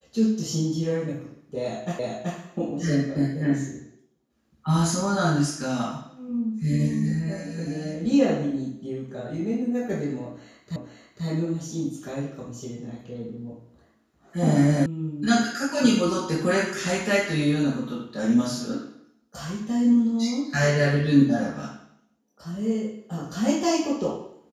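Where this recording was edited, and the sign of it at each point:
1.99 repeat of the last 0.38 s
10.76 repeat of the last 0.49 s
14.86 sound cut off

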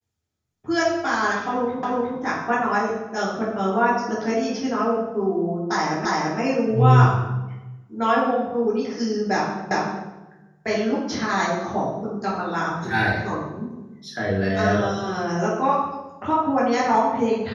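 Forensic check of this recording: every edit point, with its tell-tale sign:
1.83 repeat of the last 0.36 s
6.05 repeat of the last 0.34 s
9.71 repeat of the last 0.38 s

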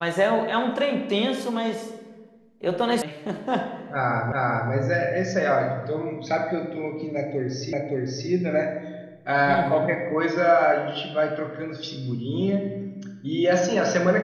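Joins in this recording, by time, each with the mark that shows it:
3.02 sound cut off
4.32 repeat of the last 0.39 s
7.73 repeat of the last 0.57 s

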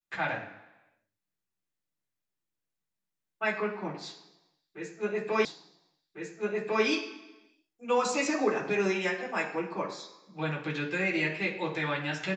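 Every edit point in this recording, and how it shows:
5.45 repeat of the last 1.4 s

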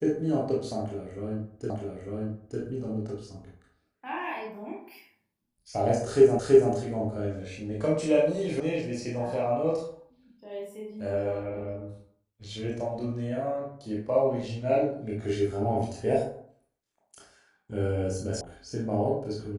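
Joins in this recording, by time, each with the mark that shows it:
1.7 repeat of the last 0.9 s
6.39 repeat of the last 0.33 s
8.6 sound cut off
18.41 sound cut off

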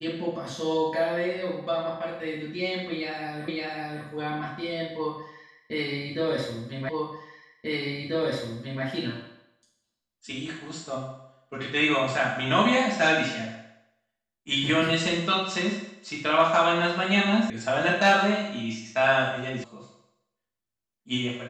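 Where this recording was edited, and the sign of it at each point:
3.48 repeat of the last 0.56 s
6.89 repeat of the last 1.94 s
17.5 sound cut off
19.64 sound cut off

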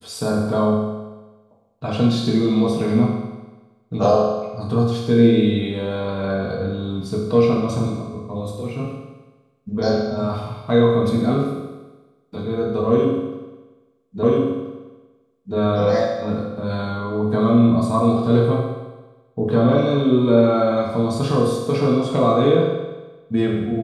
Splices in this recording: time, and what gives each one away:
14.23 repeat of the last 1.33 s

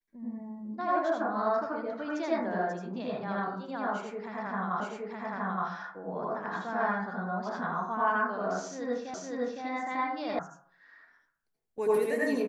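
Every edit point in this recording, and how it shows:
4.8 repeat of the last 0.87 s
9.14 repeat of the last 0.51 s
10.39 sound cut off

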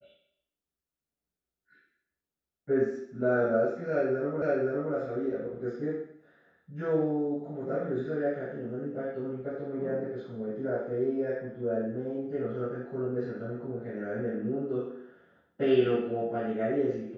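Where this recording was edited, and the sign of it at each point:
4.42 repeat of the last 0.52 s

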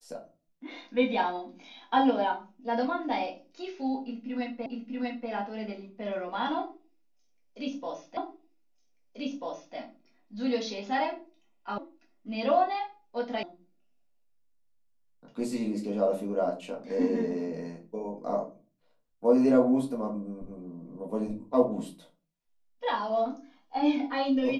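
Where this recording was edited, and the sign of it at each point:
4.66 repeat of the last 0.64 s
8.17 repeat of the last 1.59 s
11.78 sound cut off
13.43 sound cut off

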